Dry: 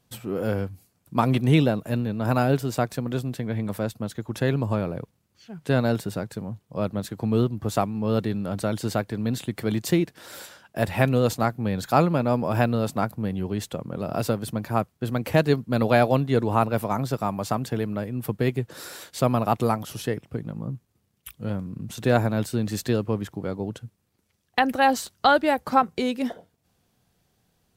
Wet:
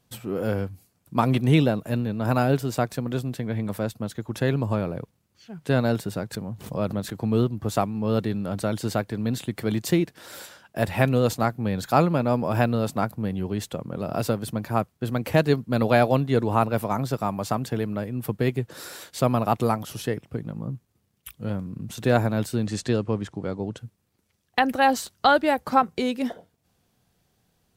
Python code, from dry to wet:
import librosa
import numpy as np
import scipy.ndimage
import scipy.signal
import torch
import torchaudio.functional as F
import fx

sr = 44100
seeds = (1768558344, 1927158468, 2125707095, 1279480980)

y = fx.pre_swell(x, sr, db_per_s=99.0, at=(6.32, 7.15), fade=0.02)
y = fx.lowpass(y, sr, hz=9100.0, slope=24, at=(22.66, 23.78))